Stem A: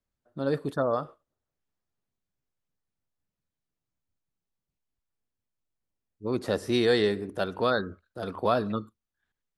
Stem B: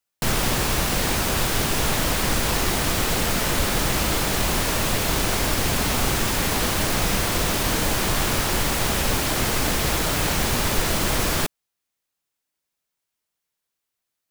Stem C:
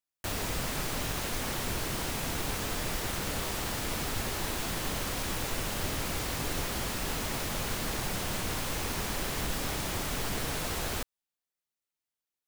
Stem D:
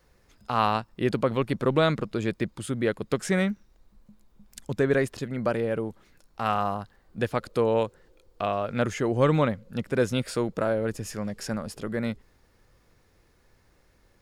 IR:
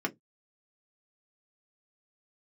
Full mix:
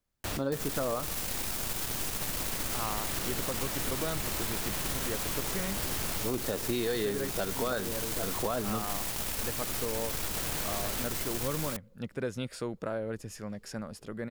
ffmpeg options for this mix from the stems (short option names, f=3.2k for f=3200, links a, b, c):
-filter_complex "[0:a]alimiter=limit=-16dB:level=0:latency=1,volume=3dB,asplit=2[a][b];[1:a]highshelf=f=6.1k:g=10.5,aeval=exprs='0.631*(cos(1*acos(clip(val(0)/0.631,-1,1)))-cos(1*PI/2))+0.0891*(cos(8*acos(clip(val(0)/0.631,-1,1)))-cos(8*PI/2))':c=same,adelay=300,volume=-14dB[c];[2:a]volume=-0.5dB[d];[3:a]adelay=2250,volume=-7.5dB[e];[b]apad=whole_len=550185[f];[d][f]sidechaincompress=threshold=-41dB:ratio=5:attack=7:release=1320[g];[a][c][g][e]amix=inputs=4:normalize=0,acompressor=threshold=-29dB:ratio=4"